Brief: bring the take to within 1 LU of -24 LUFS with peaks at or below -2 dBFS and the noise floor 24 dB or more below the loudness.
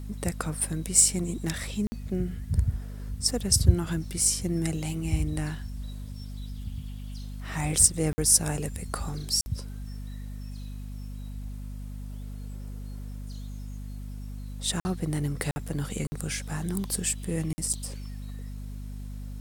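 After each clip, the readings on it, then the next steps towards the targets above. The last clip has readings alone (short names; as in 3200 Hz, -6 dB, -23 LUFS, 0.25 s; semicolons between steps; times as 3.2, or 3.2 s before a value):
dropouts 7; longest dropout 50 ms; hum 50 Hz; harmonics up to 250 Hz; hum level -35 dBFS; loudness -27.0 LUFS; peak -4.0 dBFS; loudness target -24.0 LUFS
-> interpolate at 1.87/8.13/9.41/14.8/15.51/16.07/17.53, 50 ms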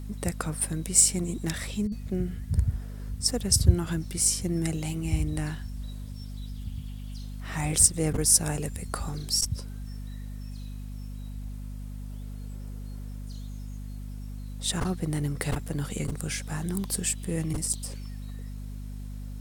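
dropouts 0; hum 50 Hz; harmonics up to 250 Hz; hum level -35 dBFS
-> de-hum 50 Hz, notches 5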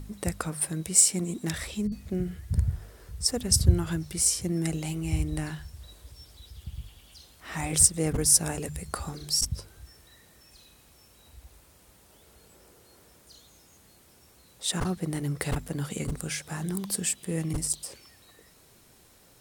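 hum none; loudness -27.0 LUFS; peak -4.0 dBFS; loudness target -24.0 LUFS
-> gain +3 dB; limiter -2 dBFS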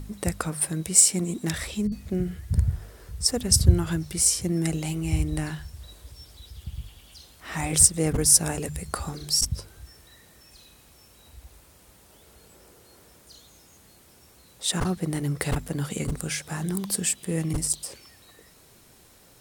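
loudness -24.0 LUFS; peak -2.0 dBFS; noise floor -55 dBFS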